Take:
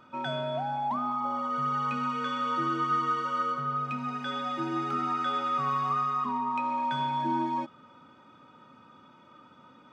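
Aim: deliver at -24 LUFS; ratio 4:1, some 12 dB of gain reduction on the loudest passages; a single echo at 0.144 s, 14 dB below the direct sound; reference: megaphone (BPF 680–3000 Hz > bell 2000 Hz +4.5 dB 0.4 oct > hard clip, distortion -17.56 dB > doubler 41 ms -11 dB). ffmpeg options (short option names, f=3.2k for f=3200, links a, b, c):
-filter_complex "[0:a]acompressor=threshold=-40dB:ratio=4,highpass=680,lowpass=3k,equalizer=f=2k:t=o:w=0.4:g=4.5,aecho=1:1:144:0.2,asoftclip=type=hard:threshold=-38.5dB,asplit=2[a][b];[b]adelay=41,volume=-11dB[c];[a][c]amix=inputs=2:normalize=0,volume=17.5dB"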